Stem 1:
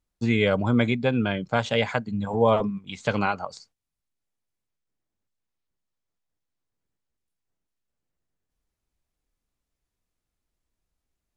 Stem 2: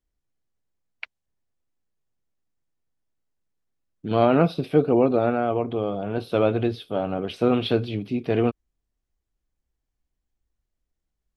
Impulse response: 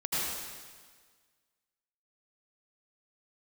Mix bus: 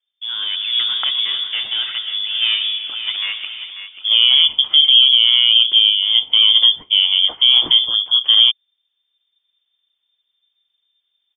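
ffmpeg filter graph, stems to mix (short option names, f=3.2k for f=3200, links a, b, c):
-filter_complex "[0:a]deesser=0.85,lowpass=f=1.2k:p=1,aeval=exprs='clip(val(0),-1,0.0708)':c=same,volume=-2dB,asplit=3[a][b][c];[b]volume=-15.5dB[d];[c]volume=-9dB[e];[1:a]equalizer=f=430:w=0.88:g=11.5,alimiter=limit=-7.5dB:level=0:latency=1:release=27,volume=-0.5dB[f];[2:a]atrim=start_sample=2205[g];[d][g]afir=irnorm=-1:irlink=0[h];[e]aecho=0:1:540|1080|1620|2160|2700|3240|3780:1|0.51|0.26|0.133|0.0677|0.0345|0.0176[i];[a][f][h][i]amix=inputs=4:normalize=0,dynaudnorm=f=250:g=5:m=6dB,lowpass=f=3.1k:t=q:w=0.5098,lowpass=f=3.1k:t=q:w=0.6013,lowpass=f=3.1k:t=q:w=0.9,lowpass=f=3.1k:t=q:w=2.563,afreqshift=-3600"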